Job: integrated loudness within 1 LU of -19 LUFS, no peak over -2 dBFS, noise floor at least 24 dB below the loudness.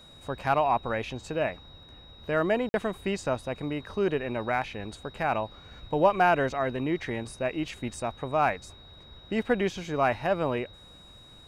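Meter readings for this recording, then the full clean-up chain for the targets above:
dropouts 1; longest dropout 51 ms; steady tone 3.8 kHz; tone level -51 dBFS; loudness -29.0 LUFS; peak level -9.5 dBFS; loudness target -19.0 LUFS
-> interpolate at 2.69 s, 51 ms; band-stop 3.8 kHz, Q 30; trim +10 dB; peak limiter -2 dBFS

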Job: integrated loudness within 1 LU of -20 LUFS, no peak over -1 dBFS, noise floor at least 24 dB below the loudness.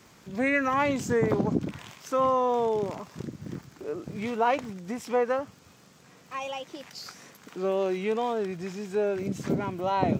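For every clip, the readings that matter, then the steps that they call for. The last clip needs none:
tick rate 59 per s; loudness -28.5 LUFS; peak level -10.0 dBFS; loudness target -20.0 LUFS
-> de-click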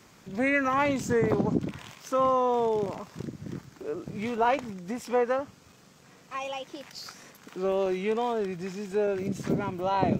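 tick rate 0.49 per s; loudness -28.5 LUFS; peak level -10.0 dBFS; loudness target -20.0 LUFS
-> trim +8.5 dB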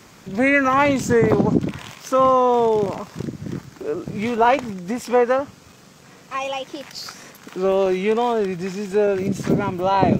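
loudness -20.0 LUFS; peak level -1.5 dBFS; noise floor -47 dBFS

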